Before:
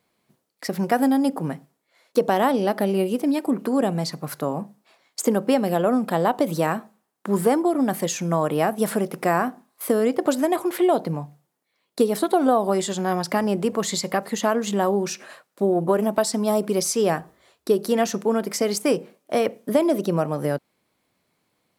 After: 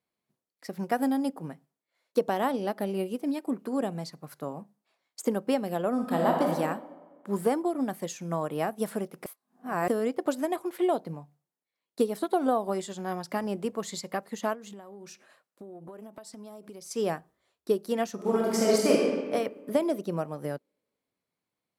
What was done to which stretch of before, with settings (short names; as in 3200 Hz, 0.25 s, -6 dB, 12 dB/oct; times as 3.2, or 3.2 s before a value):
5.92–6.46 reverb throw, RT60 1.9 s, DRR -1 dB
9.26–9.88 reverse
14.53–16.91 compressor 8:1, threshold -27 dBFS
18.14–18.95 reverb throw, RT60 2.1 s, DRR -4.5 dB
whole clip: upward expander 1.5:1, over -36 dBFS; gain -5 dB